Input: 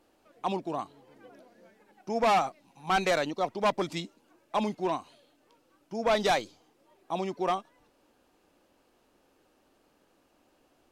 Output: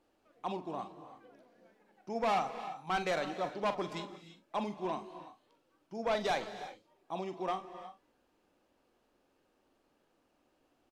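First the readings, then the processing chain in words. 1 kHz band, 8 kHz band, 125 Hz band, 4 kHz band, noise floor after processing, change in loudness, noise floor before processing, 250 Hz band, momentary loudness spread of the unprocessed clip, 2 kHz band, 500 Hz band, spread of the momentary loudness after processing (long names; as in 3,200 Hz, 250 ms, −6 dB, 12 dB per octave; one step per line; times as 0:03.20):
−6.5 dB, −9.5 dB, −6.5 dB, −7.5 dB, −75 dBFS, −7.0 dB, −68 dBFS, −6.5 dB, 14 LU, −6.5 dB, −6.5 dB, 18 LU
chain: high-shelf EQ 6,900 Hz −6.5 dB
double-tracking delay 44 ms −11 dB
reverb whose tail is shaped and stops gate 370 ms rising, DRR 11 dB
level −7 dB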